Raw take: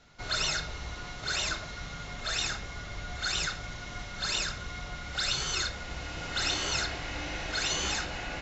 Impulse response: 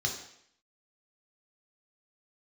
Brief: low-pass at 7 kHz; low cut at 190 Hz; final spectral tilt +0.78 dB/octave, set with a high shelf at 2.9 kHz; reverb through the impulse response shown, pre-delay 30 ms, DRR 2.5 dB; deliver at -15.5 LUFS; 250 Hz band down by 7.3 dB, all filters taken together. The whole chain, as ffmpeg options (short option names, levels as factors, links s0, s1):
-filter_complex "[0:a]highpass=190,lowpass=7000,equalizer=f=250:t=o:g=-8.5,highshelf=f=2900:g=6,asplit=2[s0][s1];[1:a]atrim=start_sample=2205,adelay=30[s2];[s1][s2]afir=irnorm=-1:irlink=0,volume=0.398[s3];[s0][s3]amix=inputs=2:normalize=0,volume=3.55"